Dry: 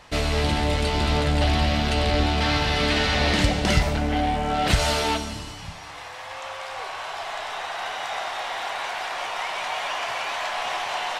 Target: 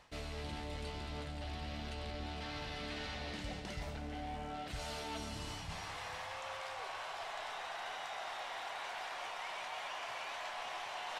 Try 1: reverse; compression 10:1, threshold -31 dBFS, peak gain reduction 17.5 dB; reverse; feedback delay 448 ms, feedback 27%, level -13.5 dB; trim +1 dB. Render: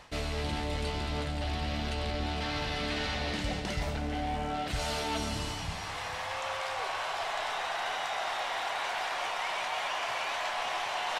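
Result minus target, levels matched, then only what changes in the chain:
compression: peak gain reduction -10 dB
change: compression 10:1, threshold -42 dBFS, peak gain reduction 27.5 dB

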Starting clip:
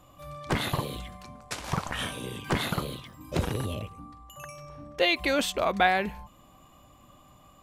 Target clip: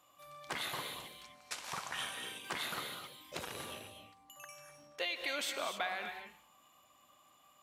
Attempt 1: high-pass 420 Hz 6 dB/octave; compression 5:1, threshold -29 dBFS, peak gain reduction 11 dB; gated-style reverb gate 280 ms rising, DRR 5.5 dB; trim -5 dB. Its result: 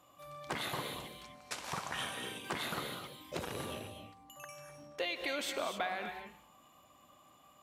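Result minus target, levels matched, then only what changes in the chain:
500 Hz band +4.0 dB
change: high-pass 1.3 kHz 6 dB/octave

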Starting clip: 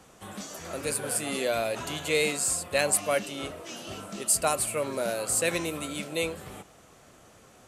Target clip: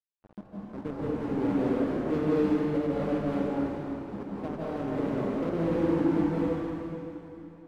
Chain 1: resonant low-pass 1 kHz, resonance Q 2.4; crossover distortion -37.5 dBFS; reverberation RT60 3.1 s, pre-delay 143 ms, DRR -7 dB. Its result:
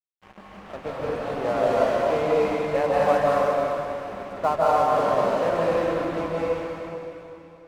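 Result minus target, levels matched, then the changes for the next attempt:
250 Hz band -11.5 dB
change: resonant low-pass 300 Hz, resonance Q 2.4

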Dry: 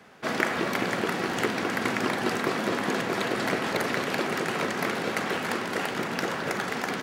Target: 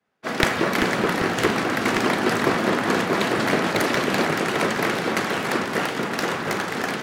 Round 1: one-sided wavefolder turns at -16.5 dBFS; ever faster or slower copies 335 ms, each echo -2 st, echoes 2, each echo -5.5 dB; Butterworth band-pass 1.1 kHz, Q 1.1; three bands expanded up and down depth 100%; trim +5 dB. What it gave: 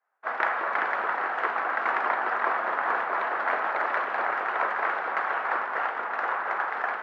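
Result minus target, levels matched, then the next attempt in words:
1 kHz band +4.5 dB
one-sided wavefolder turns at -16.5 dBFS; ever faster or slower copies 335 ms, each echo -2 st, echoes 2, each echo -5.5 dB; three bands expanded up and down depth 100%; trim +5 dB

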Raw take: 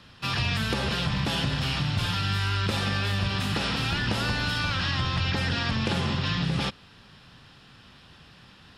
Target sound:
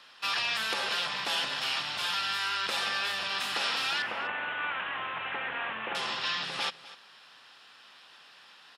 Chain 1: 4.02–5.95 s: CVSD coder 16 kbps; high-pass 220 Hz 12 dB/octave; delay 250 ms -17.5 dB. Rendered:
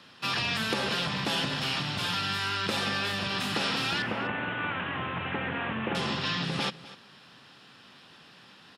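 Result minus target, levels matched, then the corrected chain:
250 Hz band +15.0 dB
4.02–5.95 s: CVSD coder 16 kbps; high-pass 690 Hz 12 dB/octave; delay 250 ms -17.5 dB

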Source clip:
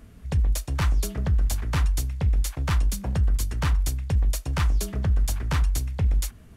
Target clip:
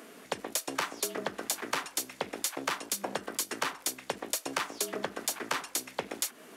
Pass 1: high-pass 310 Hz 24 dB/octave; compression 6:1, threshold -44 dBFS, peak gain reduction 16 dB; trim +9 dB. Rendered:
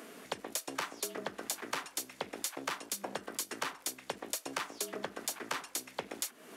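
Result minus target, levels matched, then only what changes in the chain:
compression: peak gain reduction +5 dB
change: compression 6:1, threshold -38 dBFS, peak gain reduction 11 dB

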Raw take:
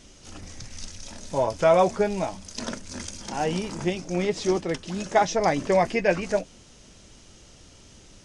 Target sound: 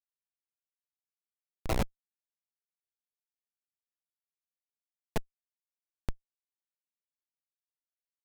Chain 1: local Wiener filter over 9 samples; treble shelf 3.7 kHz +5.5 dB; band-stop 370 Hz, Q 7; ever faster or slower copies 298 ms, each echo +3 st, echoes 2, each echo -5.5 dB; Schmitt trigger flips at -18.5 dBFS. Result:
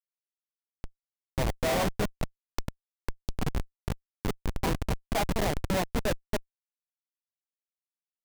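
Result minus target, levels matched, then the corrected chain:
Schmitt trigger: distortion -15 dB
local Wiener filter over 9 samples; treble shelf 3.7 kHz +5.5 dB; band-stop 370 Hz, Q 7; ever faster or slower copies 298 ms, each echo +3 st, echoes 2, each echo -5.5 dB; Schmitt trigger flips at -10 dBFS

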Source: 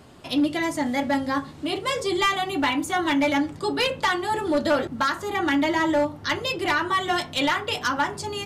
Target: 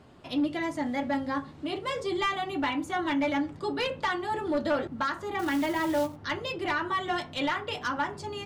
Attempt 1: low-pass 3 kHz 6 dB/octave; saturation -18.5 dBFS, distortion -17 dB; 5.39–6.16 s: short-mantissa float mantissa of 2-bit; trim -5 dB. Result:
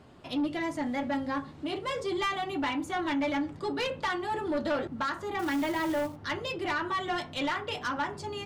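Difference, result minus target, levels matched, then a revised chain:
saturation: distortion +16 dB
low-pass 3 kHz 6 dB/octave; saturation -9 dBFS, distortion -33 dB; 5.39–6.16 s: short-mantissa float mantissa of 2-bit; trim -5 dB

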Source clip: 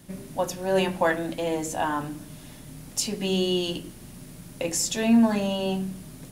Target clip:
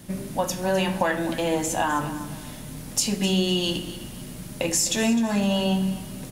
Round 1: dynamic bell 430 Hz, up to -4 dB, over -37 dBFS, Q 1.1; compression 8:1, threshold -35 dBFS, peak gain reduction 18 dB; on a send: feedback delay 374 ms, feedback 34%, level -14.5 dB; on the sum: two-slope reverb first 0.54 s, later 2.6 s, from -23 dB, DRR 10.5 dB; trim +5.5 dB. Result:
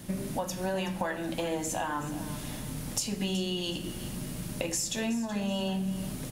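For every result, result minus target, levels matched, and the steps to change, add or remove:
echo 118 ms late; compression: peak gain reduction +9 dB
change: feedback delay 256 ms, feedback 34%, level -14.5 dB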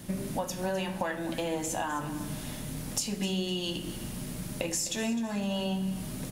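compression: peak gain reduction +9 dB
change: compression 8:1, threshold -24.5 dBFS, peak gain reduction 8.5 dB

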